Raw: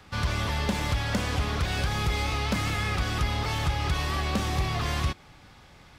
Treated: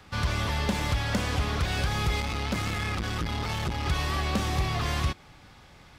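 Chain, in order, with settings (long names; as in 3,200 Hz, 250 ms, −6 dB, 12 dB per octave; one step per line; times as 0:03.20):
0:02.20–0:03.86: saturating transformer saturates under 260 Hz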